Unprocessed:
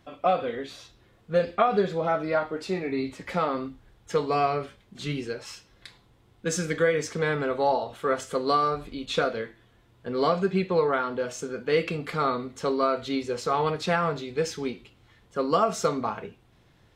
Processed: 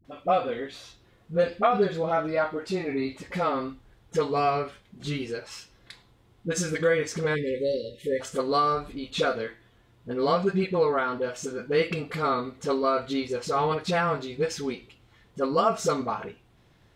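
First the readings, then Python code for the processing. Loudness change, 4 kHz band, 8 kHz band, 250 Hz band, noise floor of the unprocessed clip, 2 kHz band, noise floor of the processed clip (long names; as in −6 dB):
0.0 dB, 0.0 dB, 0.0 dB, 0.0 dB, −61 dBFS, −0.5 dB, −61 dBFS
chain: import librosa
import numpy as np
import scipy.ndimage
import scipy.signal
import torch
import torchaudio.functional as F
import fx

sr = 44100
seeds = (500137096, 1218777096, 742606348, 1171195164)

y = fx.spec_erase(x, sr, start_s=7.31, length_s=0.86, low_hz=600.0, high_hz=1700.0)
y = fx.dispersion(y, sr, late='highs', ms=49.0, hz=440.0)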